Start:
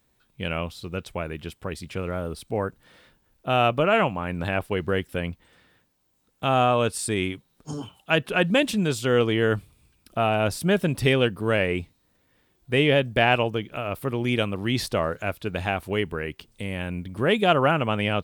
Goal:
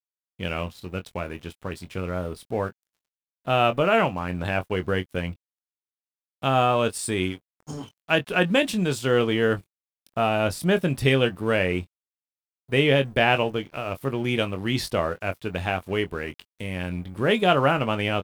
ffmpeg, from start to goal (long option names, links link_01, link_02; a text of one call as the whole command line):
ffmpeg -i in.wav -filter_complex "[0:a]aeval=exprs='sgn(val(0))*max(abs(val(0))-0.00501,0)':channel_layout=same,asplit=2[link_01][link_02];[link_02]adelay=22,volume=-10dB[link_03];[link_01][link_03]amix=inputs=2:normalize=0" out.wav